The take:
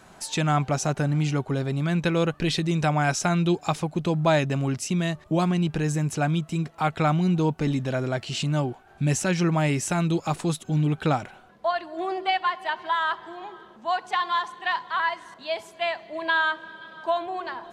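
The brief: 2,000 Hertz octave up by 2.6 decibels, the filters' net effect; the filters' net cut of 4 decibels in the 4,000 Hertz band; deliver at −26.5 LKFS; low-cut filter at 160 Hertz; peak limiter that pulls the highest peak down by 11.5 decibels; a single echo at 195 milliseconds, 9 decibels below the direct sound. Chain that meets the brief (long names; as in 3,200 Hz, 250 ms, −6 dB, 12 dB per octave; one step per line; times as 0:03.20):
high-pass filter 160 Hz
parametric band 2,000 Hz +5 dB
parametric band 4,000 Hz −7.5 dB
brickwall limiter −19 dBFS
single-tap delay 195 ms −9 dB
level +2.5 dB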